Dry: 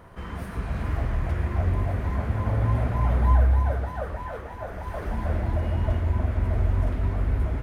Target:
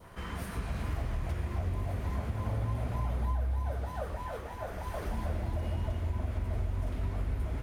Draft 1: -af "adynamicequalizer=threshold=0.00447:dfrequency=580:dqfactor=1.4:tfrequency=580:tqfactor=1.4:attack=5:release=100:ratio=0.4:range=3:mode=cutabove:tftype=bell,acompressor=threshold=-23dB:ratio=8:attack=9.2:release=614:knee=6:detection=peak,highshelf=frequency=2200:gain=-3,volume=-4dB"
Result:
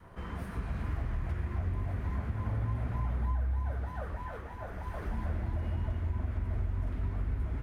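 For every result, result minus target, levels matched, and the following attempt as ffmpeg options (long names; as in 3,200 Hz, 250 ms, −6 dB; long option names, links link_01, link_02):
4,000 Hz band −7.0 dB; 500 Hz band −4.5 dB
-af "adynamicequalizer=threshold=0.00447:dfrequency=580:dqfactor=1.4:tfrequency=580:tqfactor=1.4:attack=5:release=100:ratio=0.4:range=3:mode=cutabove:tftype=bell,acompressor=threshold=-23dB:ratio=8:attack=9.2:release=614:knee=6:detection=peak,highshelf=frequency=2200:gain=9,volume=-4dB"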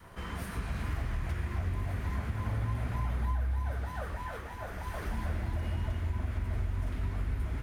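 500 Hz band −4.0 dB
-af "adynamicequalizer=threshold=0.00447:dfrequency=1700:dqfactor=1.4:tfrequency=1700:tqfactor=1.4:attack=5:release=100:ratio=0.4:range=3:mode=cutabove:tftype=bell,acompressor=threshold=-23dB:ratio=8:attack=9.2:release=614:knee=6:detection=peak,highshelf=frequency=2200:gain=9,volume=-4dB"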